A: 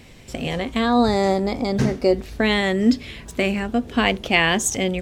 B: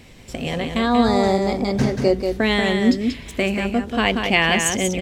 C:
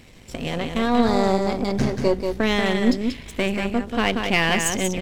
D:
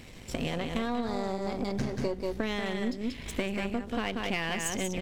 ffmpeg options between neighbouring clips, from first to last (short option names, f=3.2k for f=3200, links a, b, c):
-af "aecho=1:1:185:0.531"
-af "aeval=exprs='if(lt(val(0),0),0.447*val(0),val(0))':c=same"
-af "acompressor=threshold=-27dB:ratio=10"